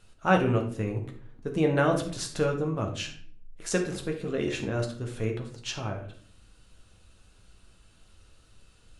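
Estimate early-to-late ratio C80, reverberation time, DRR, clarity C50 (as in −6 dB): 12.5 dB, 0.50 s, 2.0 dB, 8.0 dB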